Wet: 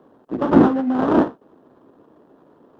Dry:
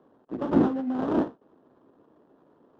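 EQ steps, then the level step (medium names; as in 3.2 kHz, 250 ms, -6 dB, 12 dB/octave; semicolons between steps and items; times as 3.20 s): dynamic bell 1.3 kHz, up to +4 dB, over -38 dBFS, Q 0.77; +8.0 dB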